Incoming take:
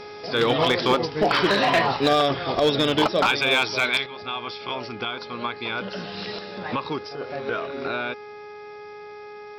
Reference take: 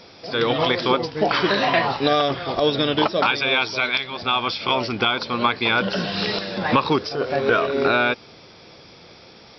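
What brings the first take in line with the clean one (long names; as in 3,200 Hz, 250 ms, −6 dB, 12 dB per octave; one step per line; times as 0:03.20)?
clipped peaks rebuilt −12.5 dBFS
hum removal 416.9 Hz, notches 6
level 0 dB, from 0:04.06 +9.5 dB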